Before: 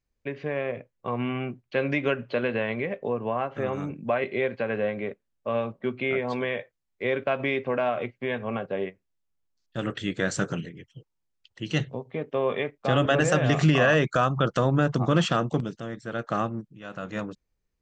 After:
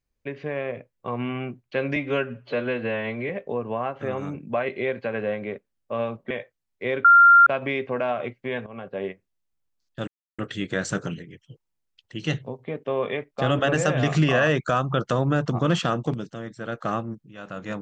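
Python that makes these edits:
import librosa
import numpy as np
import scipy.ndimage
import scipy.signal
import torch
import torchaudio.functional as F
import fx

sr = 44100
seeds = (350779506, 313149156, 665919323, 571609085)

y = fx.edit(x, sr, fx.stretch_span(start_s=1.96, length_s=0.89, factor=1.5),
    fx.cut(start_s=5.86, length_s=0.64),
    fx.insert_tone(at_s=7.24, length_s=0.42, hz=1390.0, db=-9.0),
    fx.fade_in_from(start_s=8.44, length_s=0.37, floor_db=-15.0),
    fx.insert_silence(at_s=9.85, length_s=0.31), tone=tone)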